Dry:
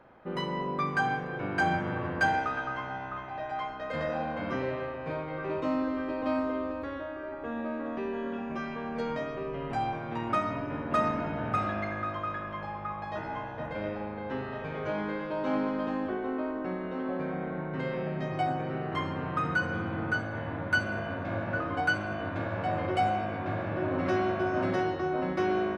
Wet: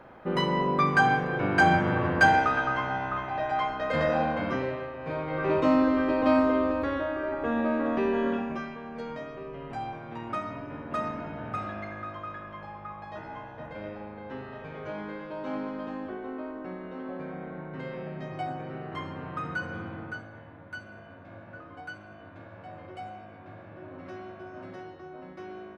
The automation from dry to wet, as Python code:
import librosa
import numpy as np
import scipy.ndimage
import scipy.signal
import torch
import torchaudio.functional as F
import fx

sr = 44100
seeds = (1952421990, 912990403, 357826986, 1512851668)

y = fx.gain(x, sr, db=fx.line((4.24, 6.5), (4.91, -2.0), (5.49, 7.5), (8.3, 7.5), (8.79, -4.5), (19.85, -4.5), (20.53, -14.0)))